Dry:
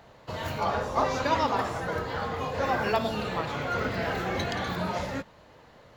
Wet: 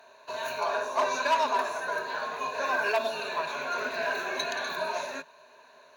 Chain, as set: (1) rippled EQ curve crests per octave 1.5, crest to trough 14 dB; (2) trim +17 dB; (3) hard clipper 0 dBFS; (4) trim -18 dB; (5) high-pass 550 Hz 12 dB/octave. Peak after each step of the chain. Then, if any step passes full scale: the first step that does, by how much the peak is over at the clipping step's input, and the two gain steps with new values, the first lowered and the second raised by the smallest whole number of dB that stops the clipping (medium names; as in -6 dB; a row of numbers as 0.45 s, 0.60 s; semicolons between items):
-8.0 dBFS, +9.0 dBFS, 0.0 dBFS, -18.0 dBFS, -13.5 dBFS; step 2, 9.0 dB; step 2 +8 dB, step 4 -9 dB